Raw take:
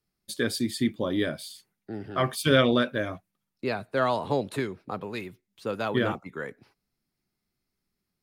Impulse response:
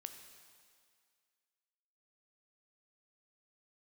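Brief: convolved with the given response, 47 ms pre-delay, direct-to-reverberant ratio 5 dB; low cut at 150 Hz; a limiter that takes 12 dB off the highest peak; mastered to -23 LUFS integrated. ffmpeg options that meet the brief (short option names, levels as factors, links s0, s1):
-filter_complex "[0:a]highpass=150,alimiter=limit=0.119:level=0:latency=1,asplit=2[s0][s1];[1:a]atrim=start_sample=2205,adelay=47[s2];[s1][s2]afir=irnorm=-1:irlink=0,volume=0.944[s3];[s0][s3]amix=inputs=2:normalize=0,volume=2.51"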